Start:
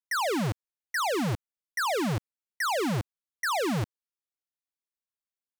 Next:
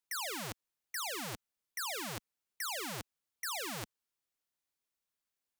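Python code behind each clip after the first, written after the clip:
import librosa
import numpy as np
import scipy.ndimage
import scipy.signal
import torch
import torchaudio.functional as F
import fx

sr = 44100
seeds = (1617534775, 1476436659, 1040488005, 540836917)

y = fx.spectral_comp(x, sr, ratio=2.0)
y = y * librosa.db_to_amplitude(1.0)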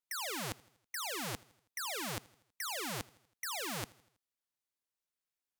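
y = fx.level_steps(x, sr, step_db=11)
y = fx.echo_feedback(y, sr, ms=81, feedback_pct=53, wet_db=-23)
y = fx.vibrato(y, sr, rate_hz=5.9, depth_cents=26.0)
y = y * librosa.db_to_amplitude(5.0)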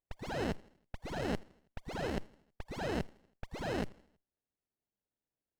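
y = fx.octave_divider(x, sr, octaves=1, level_db=0.0)
y = fx.freq_invert(y, sr, carrier_hz=2800)
y = fx.running_max(y, sr, window=33)
y = y * librosa.db_to_amplitude(5.5)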